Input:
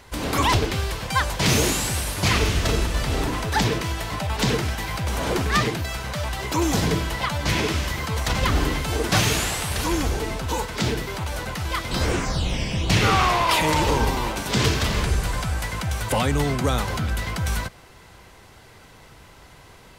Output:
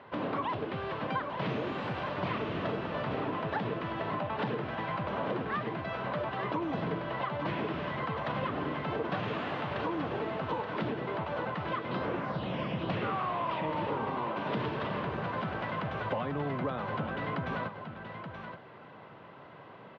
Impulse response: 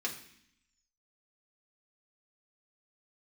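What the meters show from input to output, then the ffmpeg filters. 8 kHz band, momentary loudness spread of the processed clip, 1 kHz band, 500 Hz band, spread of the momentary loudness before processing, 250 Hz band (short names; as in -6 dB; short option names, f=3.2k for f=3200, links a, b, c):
under -40 dB, 5 LU, -8.0 dB, -6.5 dB, 8 LU, -8.5 dB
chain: -filter_complex "[0:a]highpass=f=130:w=0.5412,highpass=f=130:w=1.3066,equalizer=f=600:t=q:w=4:g=5,equalizer=f=1.1k:t=q:w=4:g=4,equalizer=f=2.2k:t=q:w=4:g=-4,lowpass=f=3.2k:w=0.5412,lowpass=f=3.2k:w=1.3066,acompressor=threshold=-29dB:ratio=6,aemphasis=mode=reproduction:type=75kf,asplit=2[a][b];[b]aecho=0:1:877:0.398[c];[a][c]amix=inputs=2:normalize=0,volume=-1.5dB"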